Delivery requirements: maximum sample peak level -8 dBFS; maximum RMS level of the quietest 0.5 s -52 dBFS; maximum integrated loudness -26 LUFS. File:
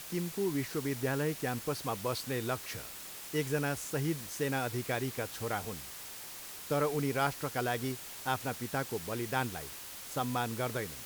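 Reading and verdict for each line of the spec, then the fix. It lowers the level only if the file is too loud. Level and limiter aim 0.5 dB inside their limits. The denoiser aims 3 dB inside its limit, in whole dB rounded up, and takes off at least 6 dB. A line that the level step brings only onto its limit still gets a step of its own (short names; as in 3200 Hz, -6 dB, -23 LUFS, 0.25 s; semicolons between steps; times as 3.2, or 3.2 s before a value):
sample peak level -15.5 dBFS: OK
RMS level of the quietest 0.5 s -46 dBFS: fail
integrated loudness -35.0 LUFS: OK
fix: denoiser 9 dB, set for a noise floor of -46 dBFS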